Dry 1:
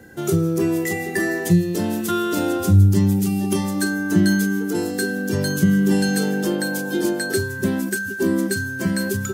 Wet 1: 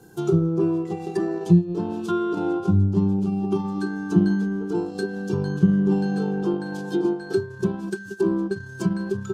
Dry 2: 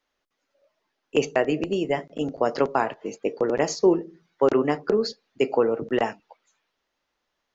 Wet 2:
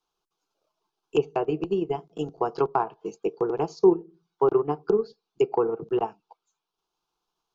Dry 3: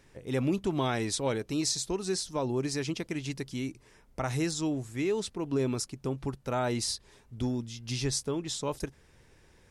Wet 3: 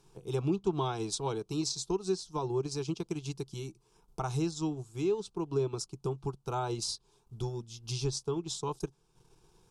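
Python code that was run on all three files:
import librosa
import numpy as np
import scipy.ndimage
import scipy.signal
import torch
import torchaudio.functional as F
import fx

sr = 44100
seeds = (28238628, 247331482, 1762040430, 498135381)

y = fx.fixed_phaser(x, sr, hz=380.0, stages=8)
y = fx.env_lowpass_down(y, sr, base_hz=2000.0, full_db=-21.0)
y = fx.transient(y, sr, attack_db=2, sustain_db=-7)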